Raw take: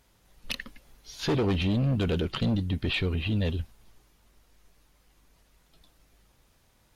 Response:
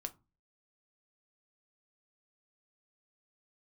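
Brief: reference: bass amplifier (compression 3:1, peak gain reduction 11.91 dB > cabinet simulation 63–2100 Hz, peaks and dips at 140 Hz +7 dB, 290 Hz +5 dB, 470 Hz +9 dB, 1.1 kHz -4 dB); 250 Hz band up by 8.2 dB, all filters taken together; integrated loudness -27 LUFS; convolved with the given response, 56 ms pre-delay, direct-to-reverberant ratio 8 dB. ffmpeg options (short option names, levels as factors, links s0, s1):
-filter_complex "[0:a]equalizer=f=250:t=o:g=6.5,asplit=2[s0][s1];[1:a]atrim=start_sample=2205,adelay=56[s2];[s1][s2]afir=irnorm=-1:irlink=0,volume=0.531[s3];[s0][s3]amix=inputs=2:normalize=0,acompressor=threshold=0.02:ratio=3,highpass=f=63:w=0.5412,highpass=f=63:w=1.3066,equalizer=f=140:t=q:w=4:g=7,equalizer=f=290:t=q:w=4:g=5,equalizer=f=470:t=q:w=4:g=9,equalizer=f=1100:t=q:w=4:g=-4,lowpass=f=2100:w=0.5412,lowpass=f=2100:w=1.3066,volume=1.78"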